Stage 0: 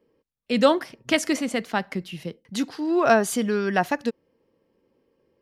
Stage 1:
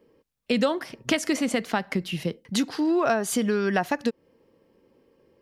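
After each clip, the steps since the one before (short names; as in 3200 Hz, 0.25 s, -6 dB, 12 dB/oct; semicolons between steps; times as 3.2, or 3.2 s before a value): compressor 5:1, threshold -27 dBFS, peak gain reduction 14 dB; gain +6 dB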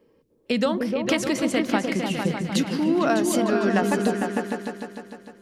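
repeats that get brighter 0.151 s, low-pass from 200 Hz, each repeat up 2 oct, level 0 dB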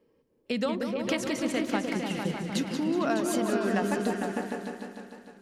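warbling echo 0.186 s, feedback 46%, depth 93 cents, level -9 dB; gain -6.5 dB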